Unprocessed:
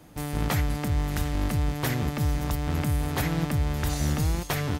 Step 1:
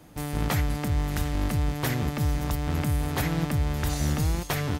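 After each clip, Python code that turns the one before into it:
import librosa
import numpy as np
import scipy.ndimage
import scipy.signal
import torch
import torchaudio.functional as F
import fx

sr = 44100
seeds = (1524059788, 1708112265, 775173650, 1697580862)

y = x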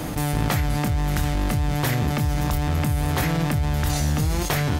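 y = fx.doubler(x, sr, ms=26.0, db=-8)
y = fx.env_flatten(y, sr, amount_pct=70)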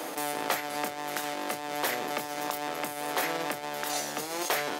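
y = fx.ladder_highpass(x, sr, hz=330.0, resonance_pct=20)
y = y * 10.0 ** (2.0 / 20.0)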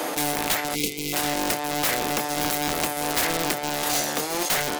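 y = fx.rider(x, sr, range_db=10, speed_s=0.5)
y = (np.mod(10.0 ** (23.5 / 20.0) * y + 1.0, 2.0) - 1.0) / 10.0 ** (23.5 / 20.0)
y = fx.spec_box(y, sr, start_s=0.75, length_s=0.38, low_hz=520.0, high_hz=2000.0, gain_db=-27)
y = y * 10.0 ** (8.0 / 20.0)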